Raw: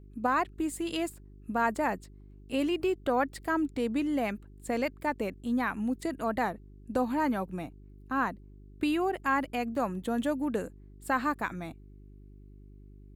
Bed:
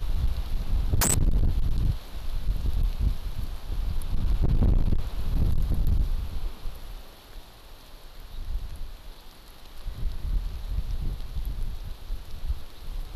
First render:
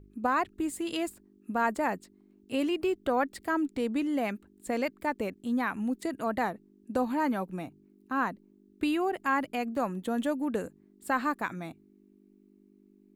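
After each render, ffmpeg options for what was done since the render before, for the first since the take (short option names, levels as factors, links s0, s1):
-af "bandreject=f=50:t=h:w=4,bandreject=f=100:t=h:w=4,bandreject=f=150:t=h:w=4"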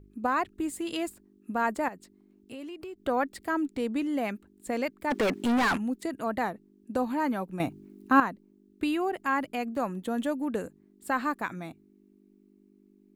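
-filter_complex "[0:a]asettb=1/sr,asplit=3[s0][s1][s2];[s0]atrim=end=1.884[s3];[s1]atrim=start=1.88:end=3.06,asetpts=PTS-STARTPTS,afade=t=in:d=0.004:c=qsin,afade=t=out:st=1.176:d=0.004:c=qsin,acompressor=threshold=0.01:ratio=4:attack=3.2:release=140:knee=1:detection=peak[s4];[s2]atrim=start=3.056[s5];[s3][s4]acrossfade=d=0.004:c1=hsin:c2=qsin[s6];[s6][s5]acrossfade=d=0.004:c1=qsin:c2=hsin,asplit=3[s7][s8][s9];[s7]afade=t=out:st=5.1:d=0.02[s10];[s8]asplit=2[s11][s12];[s12]highpass=f=720:p=1,volume=44.7,asoftclip=type=tanh:threshold=0.126[s13];[s11][s13]amix=inputs=2:normalize=0,lowpass=f=3200:p=1,volume=0.501,afade=t=in:st=5.1:d=0.02,afade=t=out:st=5.76:d=0.02[s14];[s9]afade=t=in:st=5.76:d=0.02[s15];[s10][s14][s15]amix=inputs=3:normalize=0,asplit=3[s16][s17][s18];[s16]atrim=end=7.602[s19];[s17]atrim=start=7.598:end=8.202,asetpts=PTS-STARTPTS,volume=3.35[s20];[s18]atrim=start=8.198[s21];[s19][s20]acrossfade=d=0.004:c1=hsin:c2=hsin[s22];[s22][s21]acrossfade=d=0.004:c1=hsin:c2=hsin"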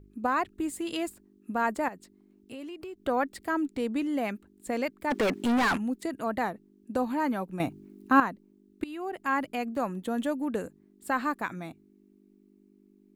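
-filter_complex "[0:a]asplit=2[s0][s1];[s0]atrim=end=8.84,asetpts=PTS-STARTPTS,afade=t=out:st=8.836:d=0.004:c=hsin:silence=0.125893[s2];[s1]atrim=start=8.84,asetpts=PTS-STARTPTS,afade=t=in:d=0.49:silence=0.125893[s3];[s2][s3]concat=n=2:v=0:a=1"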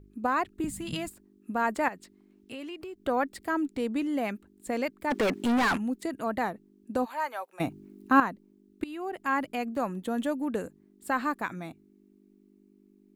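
-filter_complex "[0:a]asettb=1/sr,asplit=3[s0][s1][s2];[s0]atrim=end=0.644[s3];[s1]atrim=start=0.64:end=1.08,asetpts=PTS-STARTPTS,afade=t=in:d=0.004:c=qsin,afade=t=out:st=0.436:d=0.004:c=qsin,lowshelf=f=250:t=q:w=3:g=13.5[s4];[s2]atrim=start=1.076[s5];[s3][s4]acrossfade=d=0.004:c1=hsin:c2=qsin[s6];[s6][s5]acrossfade=d=0.004:c1=qsin:c2=hsin,asettb=1/sr,asplit=3[s7][s8][s9];[s7]atrim=end=1.734[s10];[s8]atrim=start=1.73:end=2.83,asetpts=PTS-STARTPTS,afade=t=in:d=0.004:c=qsin,afade=t=out:st=1.096:d=0.004:c=qsin,equalizer=f=2300:t=o:w=2.5:g=5.5[s11];[s9]atrim=start=2.826[s12];[s10][s11]acrossfade=d=0.004:c1=hsin:c2=qsin[s13];[s13][s12]acrossfade=d=0.004:c1=qsin:c2=hsin,asplit=3[s14][s15][s16];[s14]afade=t=out:st=7.04:d=0.02[s17];[s15]highpass=f=570:w=0.5412,highpass=f=570:w=1.3066,afade=t=in:st=7.04:d=0.02,afade=t=out:st=7.59:d=0.02[s18];[s16]afade=t=in:st=7.59:d=0.02[s19];[s17][s18][s19]amix=inputs=3:normalize=0"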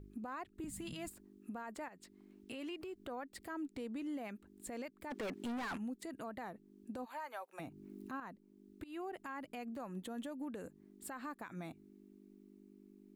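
-af "acompressor=threshold=0.00708:ratio=2,alimiter=level_in=3.98:limit=0.0631:level=0:latency=1:release=141,volume=0.251"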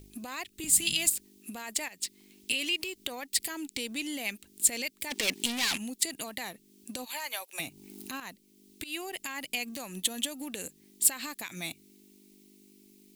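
-filter_complex "[0:a]aexciter=amount=9:drive=5.9:freq=2100,asplit=2[s0][s1];[s1]aeval=exprs='sgn(val(0))*max(abs(val(0))-0.00251,0)':c=same,volume=0.596[s2];[s0][s2]amix=inputs=2:normalize=0"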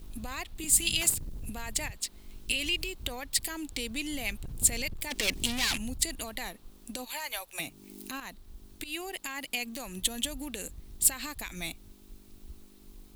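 -filter_complex "[1:a]volume=0.133[s0];[0:a][s0]amix=inputs=2:normalize=0"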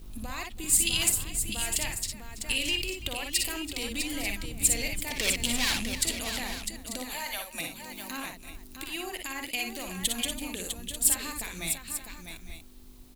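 -af "aecho=1:1:48|59|332|652|853|891:0.316|0.531|0.158|0.422|0.126|0.251"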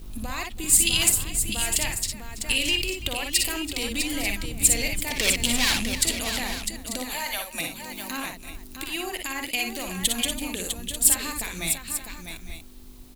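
-af "volume=1.78"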